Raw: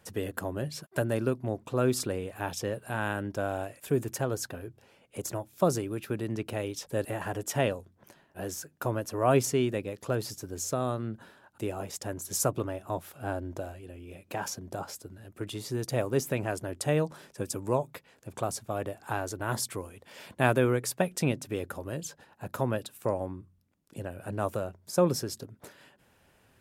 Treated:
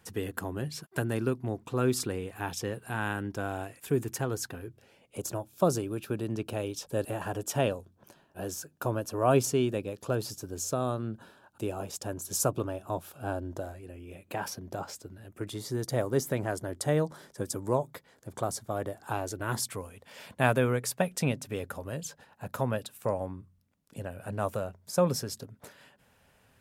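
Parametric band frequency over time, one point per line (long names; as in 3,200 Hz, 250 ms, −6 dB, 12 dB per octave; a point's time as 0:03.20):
parametric band −11.5 dB 0.23 octaves
0:04.60 590 Hz
0:05.21 2,000 Hz
0:13.43 2,000 Hz
0:14.98 12,000 Hz
0:15.54 2,600 Hz
0:19.00 2,600 Hz
0:19.76 340 Hz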